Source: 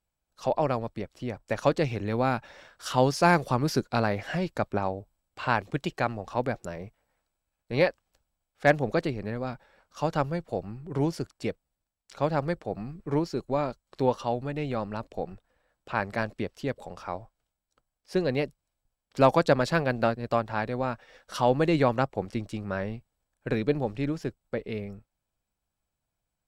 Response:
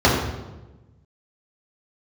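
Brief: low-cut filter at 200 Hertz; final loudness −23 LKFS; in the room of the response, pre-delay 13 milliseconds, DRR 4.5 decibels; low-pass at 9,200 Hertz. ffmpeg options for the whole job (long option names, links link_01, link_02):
-filter_complex "[0:a]highpass=200,lowpass=9200,asplit=2[link_01][link_02];[1:a]atrim=start_sample=2205,adelay=13[link_03];[link_02][link_03]afir=irnorm=-1:irlink=0,volume=-28dB[link_04];[link_01][link_04]amix=inputs=2:normalize=0,volume=4dB"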